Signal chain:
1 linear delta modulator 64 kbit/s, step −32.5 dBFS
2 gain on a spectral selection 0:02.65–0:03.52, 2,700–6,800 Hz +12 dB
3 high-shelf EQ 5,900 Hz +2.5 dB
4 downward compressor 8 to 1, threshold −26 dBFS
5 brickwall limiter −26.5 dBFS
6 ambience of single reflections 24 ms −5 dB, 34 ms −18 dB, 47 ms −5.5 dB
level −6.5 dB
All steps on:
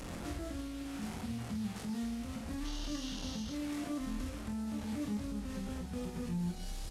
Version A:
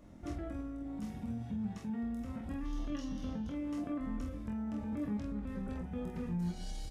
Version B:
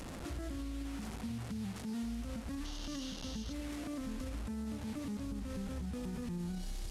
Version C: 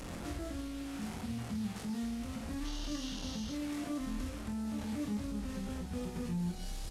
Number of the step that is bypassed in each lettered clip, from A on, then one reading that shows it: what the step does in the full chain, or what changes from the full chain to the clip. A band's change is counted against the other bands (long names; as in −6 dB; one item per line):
1, 4 kHz band −10.0 dB
6, echo-to-direct ratio −2.0 dB to none audible
4, average gain reduction 3.5 dB